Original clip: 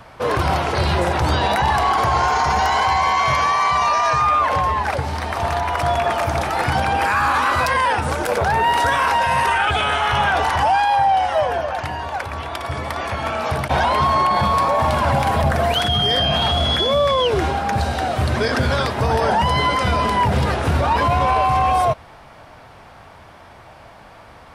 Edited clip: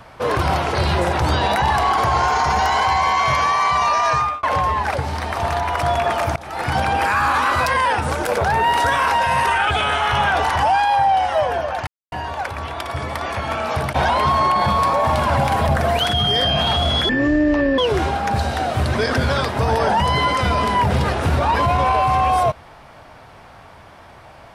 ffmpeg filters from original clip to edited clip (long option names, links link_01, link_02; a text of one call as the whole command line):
ffmpeg -i in.wav -filter_complex "[0:a]asplit=6[link_01][link_02][link_03][link_04][link_05][link_06];[link_01]atrim=end=4.43,asetpts=PTS-STARTPTS,afade=type=out:start_time=4.17:duration=0.26[link_07];[link_02]atrim=start=4.43:end=6.36,asetpts=PTS-STARTPTS,afade=type=in:duration=0.004:curve=hsin,afade=type=out:start_time=1.926:duration=0.004:curve=hsin:silence=0.0707946[link_08];[link_03]atrim=start=6.36:end=11.87,asetpts=PTS-STARTPTS,afade=type=in:duration=0.42:silence=0.0707946,afade=type=out:start_time=5.506:duration=0.004:curve=hsin,apad=pad_dur=0.25[link_09];[link_04]atrim=start=11.87:end=16.844,asetpts=PTS-STARTPTS,afade=type=in:duration=0.004:curve=hsin[link_10];[link_05]atrim=start=16.84:end=17.2,asetpts=PTS-STARTPTS,asetrate=22932,aresample=44100[link_11];[link_06]atrim=start=17.196[link_12];[link_07][link_08][link_09][link_10]concat=n=4:v=0:a=1[link_13];[link_13][link_11]acrossfade=duration=0.004:curve1=hsin:curve2=hsin[link_14];[link_14][link_12]acrossfade=duration=0.004:curve1=hsin:curve2=hsin" out.wav